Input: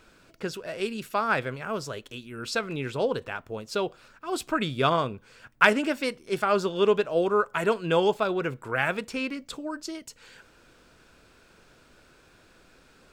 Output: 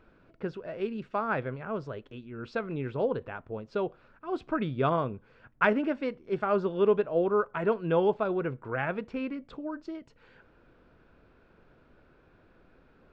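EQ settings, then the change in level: tape spacing loss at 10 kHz 43 dB; 0.0 dB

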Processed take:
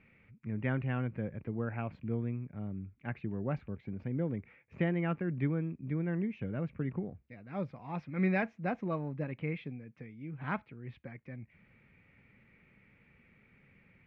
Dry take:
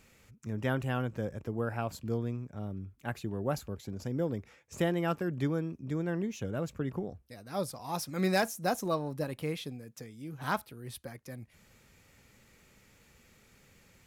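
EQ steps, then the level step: four-pole ladder low-pass 2.5 kHz, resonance 65%; distance through air 77 m; peaking EQ 170 Hz +9.5 dB 2.1 oct; +3.0 dB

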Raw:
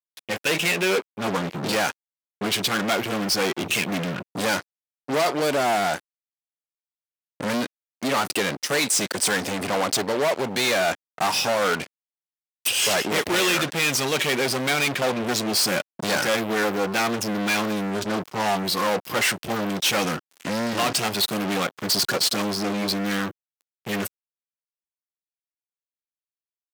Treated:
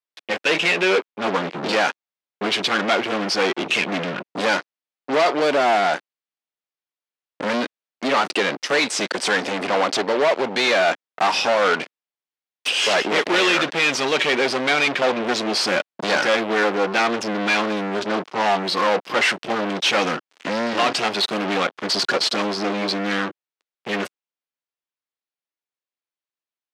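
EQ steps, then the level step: band-pass 260–4300 Hz; +4.5 dB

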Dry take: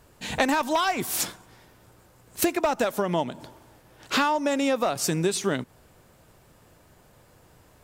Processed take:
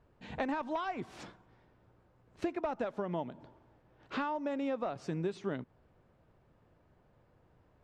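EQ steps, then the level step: tape spacing loss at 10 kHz 32 dB; -9.0 dB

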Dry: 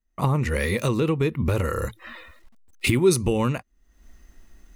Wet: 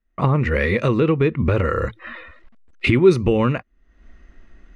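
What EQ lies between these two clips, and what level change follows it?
low-pass 2.2 kHz 12 dB/octave; bass shelf 400 Hz -5 dB; peaking EQ 880 Hz -6 dB 0.63 oct; +8.5 dB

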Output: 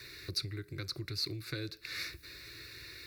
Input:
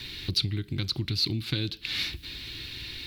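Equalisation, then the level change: high-pass 200 Hz 6 dB/octave; static phaser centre 850 Hz, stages 6; -1.5 dB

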